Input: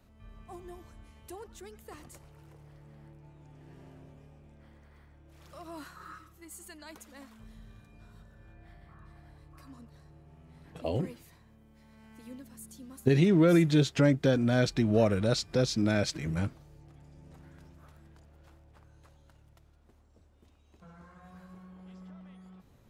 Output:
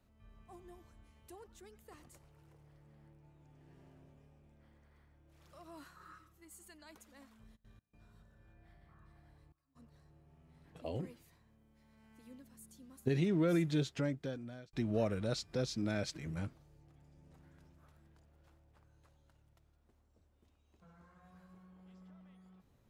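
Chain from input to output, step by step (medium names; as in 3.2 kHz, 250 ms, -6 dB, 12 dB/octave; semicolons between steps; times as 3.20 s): 7.55–9.75 s: trance gate "xxxxxx..x.xxxxx" 104 bpm -24 dB; 13.75–14.73 s: fade out; trim -9 dB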